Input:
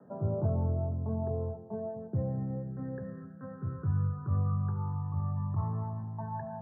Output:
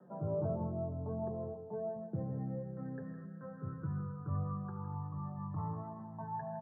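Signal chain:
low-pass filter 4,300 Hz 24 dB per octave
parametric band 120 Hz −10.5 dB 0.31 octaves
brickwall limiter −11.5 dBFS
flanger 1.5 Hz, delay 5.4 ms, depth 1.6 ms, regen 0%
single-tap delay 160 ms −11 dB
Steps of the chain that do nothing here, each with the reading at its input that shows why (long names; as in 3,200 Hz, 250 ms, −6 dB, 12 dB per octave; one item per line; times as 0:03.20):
low-pass filter 4,300 Hz: nothing at its input above 680 Hz
brickwall limiter −11.5 dBFS: peak of its input −21.0 dBFS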